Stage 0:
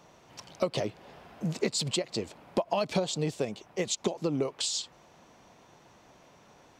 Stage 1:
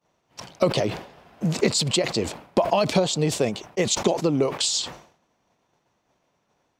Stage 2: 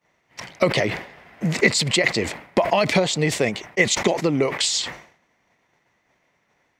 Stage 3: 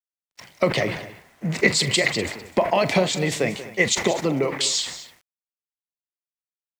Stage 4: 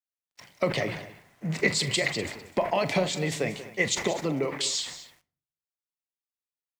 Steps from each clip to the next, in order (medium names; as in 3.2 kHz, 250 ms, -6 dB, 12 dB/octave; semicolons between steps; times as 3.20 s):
expander -44 dBFS; decay stretcher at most 110 dB/s; trim +7.5 dB
peaking EQ 2 kHz +14.5 dB 0.52 oct; trim +1 dB
multi-tap echo 43/185/250 ms -14.5/-13/-15 dB; word length cut 8-bit, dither none; three bands expanded up and down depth 40%; trim -2 dB
simulated room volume 480 m³, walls furnished, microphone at 0.34 m; trim -6 dB